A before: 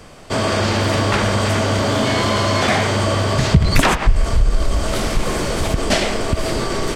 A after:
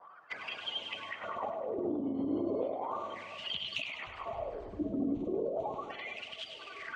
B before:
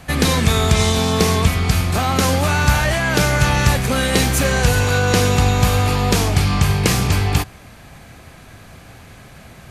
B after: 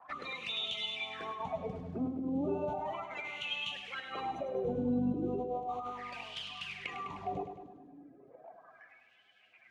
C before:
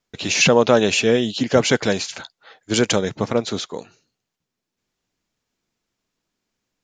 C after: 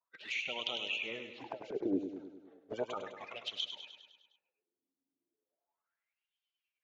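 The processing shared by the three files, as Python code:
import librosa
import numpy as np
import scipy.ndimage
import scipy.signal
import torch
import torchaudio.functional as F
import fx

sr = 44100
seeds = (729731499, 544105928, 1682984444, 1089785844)

p1 = fx.spec_quant(x, sr, step_db=30)
p2 = fx.peak_eq(p1, sr, hz=700.0, db=3.0, octaves=0.76)
p3 = fx.wah_lfo(p2, sr, hz=0.35, low_hz=270.0, high_hz=3100.0, q=9.6)
p4 = fx.vibrato(p3, sr, rate_hz=0.8, depth_cents=10.0)
p5 = fx.over_compress(p4, sr, threshold_db=-33.0, ratio=-1.0)
p6 = fx.env_flanger(p5, sr, rest_ms=11.6, full_db=-33.0)
p7 = fx.air_absorb(p6, sr, metres=63.0)
y = p7 + fx.echo_feedback(p7, sr, ms=102, feedback_pct=59, wet_db=-9.0, dry=0)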